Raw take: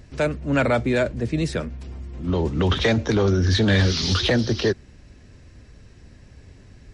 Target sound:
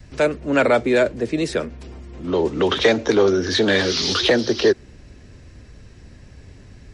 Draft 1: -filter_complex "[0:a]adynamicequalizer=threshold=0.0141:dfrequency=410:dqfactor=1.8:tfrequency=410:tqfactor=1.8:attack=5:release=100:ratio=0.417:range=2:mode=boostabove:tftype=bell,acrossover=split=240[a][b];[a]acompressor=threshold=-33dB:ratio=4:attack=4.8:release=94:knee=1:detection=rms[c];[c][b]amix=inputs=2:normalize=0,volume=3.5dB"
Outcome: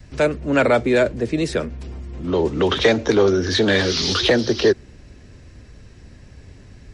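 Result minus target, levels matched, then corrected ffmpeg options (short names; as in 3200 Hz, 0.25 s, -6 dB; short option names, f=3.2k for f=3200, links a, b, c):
compressor: peak gain reduction -5.5 dB
-filter_complex "[0:a]adynamicequalizer=threshold=0.0141:dfrequency=410:dqfactor=1.8:tfrequency=410:tqfactor=1.8:attack=5:release=100:ratio=0.417:range=2:mode=boostabove:tftype=bell,acrossover=split=240[a][b];[a]acompressor=threshold=-40.5dB:ratio=4:attack=4.8:release=94:knee=1:detection=rms[c];[c][b]amix=inputs=2:normalize=0,volume=3.5dB"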